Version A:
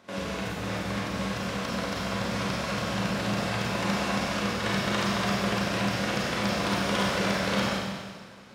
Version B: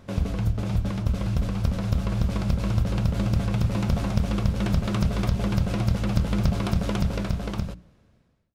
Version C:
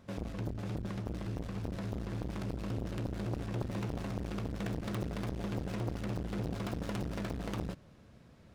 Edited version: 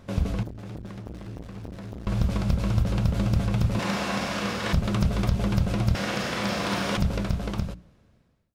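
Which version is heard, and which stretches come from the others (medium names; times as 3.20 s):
B
0.43–2.07 s: from C
3.79–4.73 s: from A
5.95–6.97 s: from A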